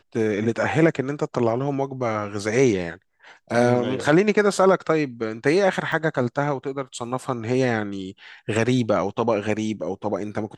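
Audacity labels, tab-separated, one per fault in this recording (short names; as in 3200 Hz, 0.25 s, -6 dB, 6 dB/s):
5.920000	5.920000	gap 3.3 ms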